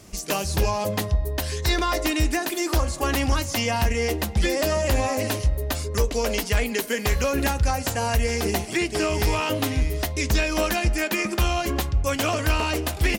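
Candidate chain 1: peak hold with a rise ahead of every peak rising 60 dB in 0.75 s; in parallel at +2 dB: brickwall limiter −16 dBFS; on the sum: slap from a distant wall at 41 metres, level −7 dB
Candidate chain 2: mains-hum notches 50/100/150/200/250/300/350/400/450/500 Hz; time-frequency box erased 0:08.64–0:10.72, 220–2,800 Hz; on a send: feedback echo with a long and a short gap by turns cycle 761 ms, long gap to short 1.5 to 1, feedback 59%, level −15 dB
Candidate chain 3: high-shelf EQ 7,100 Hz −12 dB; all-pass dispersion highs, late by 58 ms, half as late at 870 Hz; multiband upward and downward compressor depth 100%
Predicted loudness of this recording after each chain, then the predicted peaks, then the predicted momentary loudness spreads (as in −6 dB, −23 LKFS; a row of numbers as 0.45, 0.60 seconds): −15.5, −24.5, −23.5 LKFS; −2.0, −11.0, −9.0 dBFS; 1, 4, 2 LU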